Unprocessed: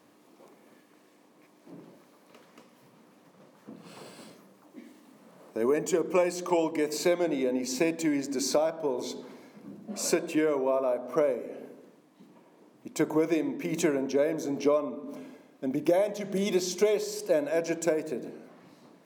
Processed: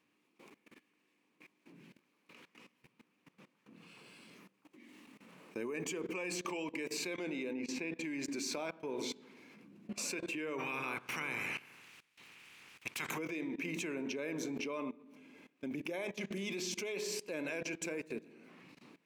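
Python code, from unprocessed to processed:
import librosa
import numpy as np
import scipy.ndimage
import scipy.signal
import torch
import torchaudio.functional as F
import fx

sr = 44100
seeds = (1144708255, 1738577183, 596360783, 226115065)

y = fx.spec_box(x, sr, start_s=1.76, length_s=0.21, low_hz=270.0, high_hz=1400.0, gain_db=-6)
y = fx.lowpass(y, sr, hz=2300.0, slope=6, at=(7.53, 8.04))
y = fx.spec_clip(y, sr, under_db=28, at=(10.58, 13.17), fade=0.02)
y = fx.graphic_eq_15(y, sr, hz=(630, 2500, 16000), db=(-9, 12, -5))
y = fx.level_steps(y, sr, step_db=19)
y = y * 10.0 ** (-1.0 / 20.0)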